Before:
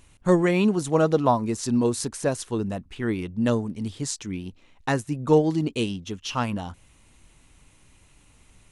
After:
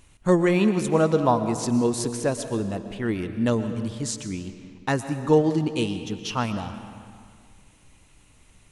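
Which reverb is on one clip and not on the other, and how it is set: digital reverb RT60 2.1 s, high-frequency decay 0.75×, pre-delay 85 ms, DRR 9.5 dB

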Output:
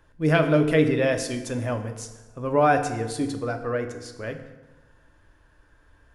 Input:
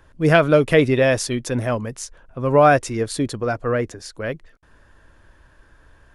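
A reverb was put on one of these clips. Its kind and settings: FDN reverb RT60 1.2 s, low-frequency decay 1.05×, high-frequency decay 0.7×, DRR 5.5 dB; gain -7 dB

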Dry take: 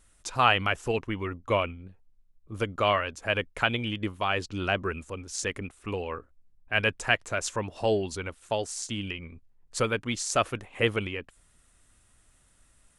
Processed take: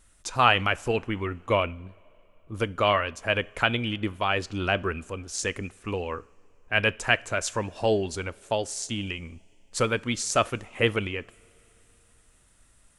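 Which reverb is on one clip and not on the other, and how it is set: two-slope reverb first 0.38 s, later 3.3 s, from -18 dB, DRR 18.5 dB; gain +2 dB

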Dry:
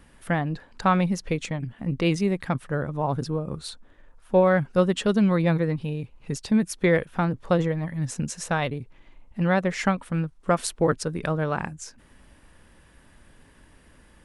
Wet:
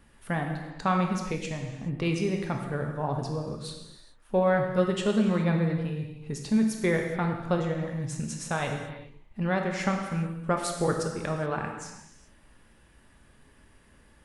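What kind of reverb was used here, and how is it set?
non-linear reverb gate 0.45 s falling, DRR 2 dB; gain -5.5 dB

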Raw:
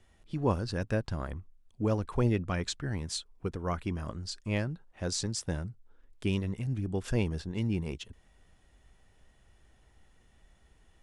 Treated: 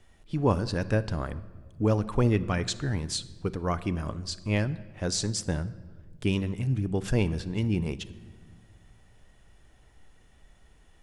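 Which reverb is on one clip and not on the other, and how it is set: shoebox room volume 1600 m³, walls mixed, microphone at 0.36 m; gain +4 dB

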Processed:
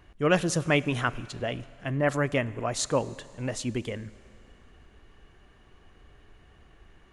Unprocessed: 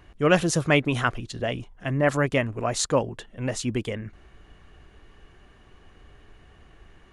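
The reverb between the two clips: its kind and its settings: Schroeder reverb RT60 2.6 s, combs from 33 ms, DRR 18.5 dB; gain -3.5 dB

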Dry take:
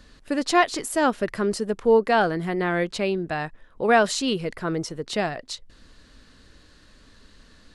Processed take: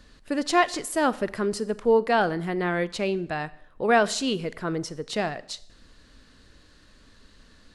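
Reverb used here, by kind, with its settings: Schroeder reverb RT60 0.68 s, combs from 30 ms, DRR 17.5 dB; gain -2 dB

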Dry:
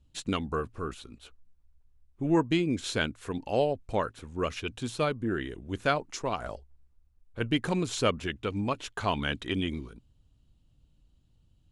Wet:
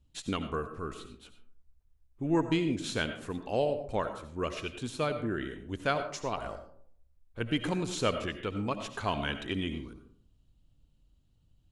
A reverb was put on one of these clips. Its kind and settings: digital reverb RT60 0.59 s, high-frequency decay 0.4×, pre-delay 45 ms, DRR 8.5 dB; gain -3 dB

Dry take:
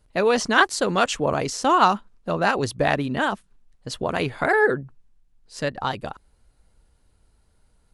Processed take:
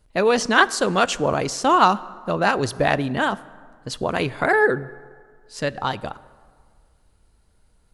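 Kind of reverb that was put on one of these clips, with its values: plate-style reverb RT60 1.9 s, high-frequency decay 0.55×, DRR 18 dB; gain +1.5 dB

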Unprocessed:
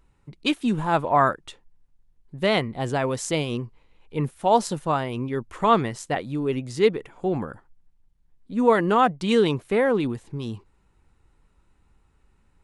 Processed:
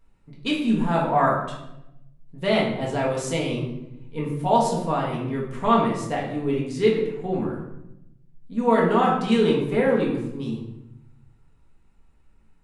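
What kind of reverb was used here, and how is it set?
shoebox room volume 280 m³, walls mixed, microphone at 1.7 m; gain -6 dB

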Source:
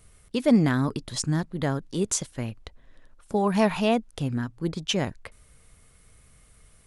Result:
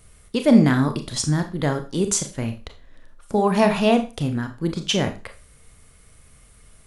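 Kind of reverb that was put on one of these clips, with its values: Schroeder reverb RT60 0.31 s, combs from 27 ms, DRR 6.5 dB; gain +4 dB

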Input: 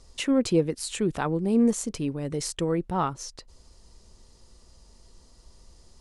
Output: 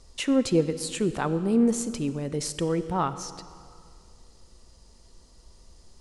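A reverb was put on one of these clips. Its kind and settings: digital reverb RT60 2.3 s, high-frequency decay 0.85×, pre-delay 10 ms, DRR 12.5 dB

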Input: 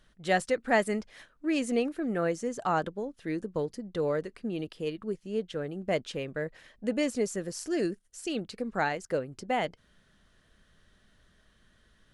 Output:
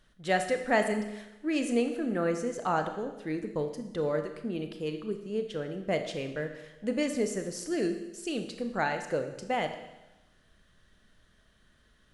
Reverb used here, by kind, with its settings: Schroeder reverb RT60 1 s, combs from 26 ms, DRR 6.5 dB; gain -1 dB

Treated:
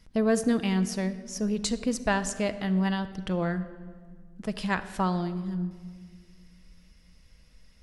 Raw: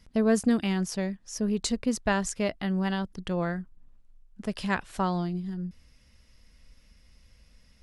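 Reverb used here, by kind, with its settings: shoebox room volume 2500 m³, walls mixed, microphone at 0.61 m

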